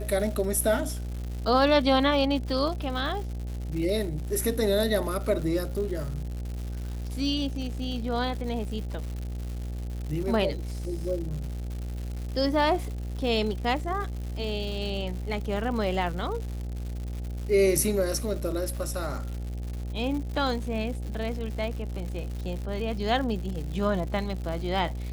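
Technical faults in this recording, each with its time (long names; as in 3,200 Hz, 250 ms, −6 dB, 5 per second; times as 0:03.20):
mains buzz 60 Hz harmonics 14 −33 dBFS
surface crackle 210 per second −35 dBFS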